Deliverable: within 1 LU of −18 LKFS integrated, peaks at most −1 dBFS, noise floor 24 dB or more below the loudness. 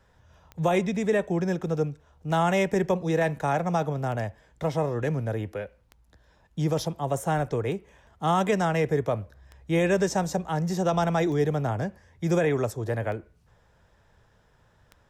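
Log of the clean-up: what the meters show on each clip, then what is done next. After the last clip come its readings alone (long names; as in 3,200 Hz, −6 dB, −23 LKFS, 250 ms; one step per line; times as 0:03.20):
number of clicks 9; integrated loudness −27.0 LKFS; sample peak −13.5 dBFS; target loudness −18.0 LKFS
→ click removal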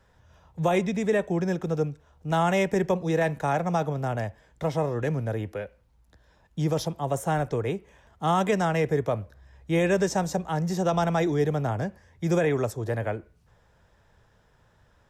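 number of clicks 0; integrated loudness −27.0 LKFS; sample peak −13.5 dBFS; target loudness −18.0 LKFS
→ level +9 dB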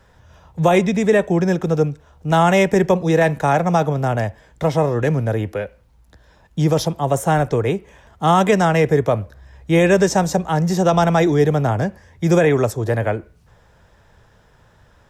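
integrated loudness −18.0 LKFS; sample peak −4.5 dBFS; background noise floor −54 dBFS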